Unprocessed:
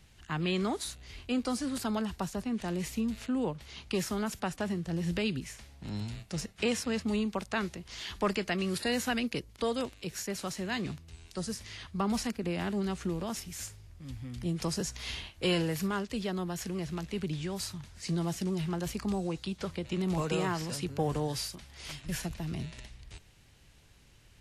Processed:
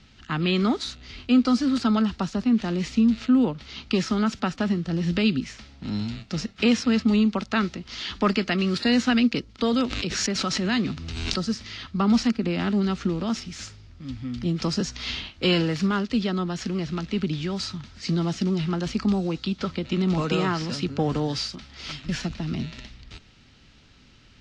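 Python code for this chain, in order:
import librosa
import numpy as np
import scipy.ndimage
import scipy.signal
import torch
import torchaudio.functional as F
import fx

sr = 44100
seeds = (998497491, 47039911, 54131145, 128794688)

y = scipy.signal.sosfilt(scipy.signal.butter(4, 5100.0, 'lowpass', fs=sr, output='sos'), x)
y = fx.high_shelf(y, sr, hz=3100.0, db=9.5)
y = fx.small_body(y, sr, hz=(240.0, 1300.0), ring_ms=30, db=10)
y = fx.pre_swell(y, sr, db_per_s=29.0, at=(9.73, 11.44))
y = y * 10.0 ** (3.5 / 20.0)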